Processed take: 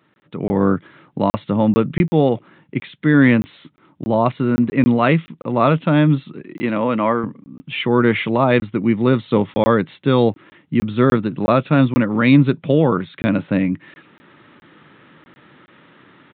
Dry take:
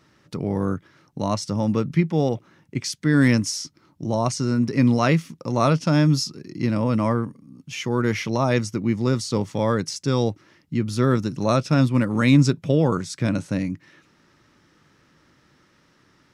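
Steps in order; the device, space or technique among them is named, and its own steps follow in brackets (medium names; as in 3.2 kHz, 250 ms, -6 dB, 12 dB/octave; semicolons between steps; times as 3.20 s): call with lost packets (high-pass 150 Hz 12 dB/octave; resampled via 8 kHz; level rider gain up to 13 dB; lost packets of 20 ms random); 6.41–7.24 s: high-pass 410 Hz 6 dB/octave; trim -1 dB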